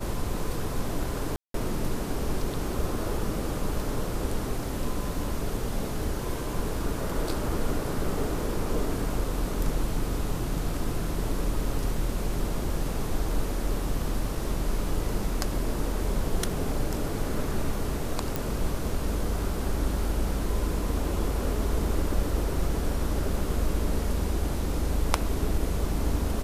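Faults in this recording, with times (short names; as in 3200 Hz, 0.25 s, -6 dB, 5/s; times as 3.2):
1.36–1.54 gap 0.183 s
18.36 pop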